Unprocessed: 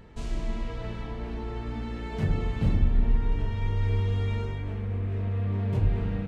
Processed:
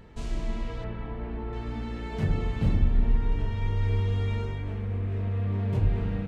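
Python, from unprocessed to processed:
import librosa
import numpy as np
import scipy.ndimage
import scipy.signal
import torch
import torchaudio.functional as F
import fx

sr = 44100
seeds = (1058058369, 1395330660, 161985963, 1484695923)

y = fx.lowpass(x, sr, hz=2300.0, slope=12, at=(0.84, 1.53))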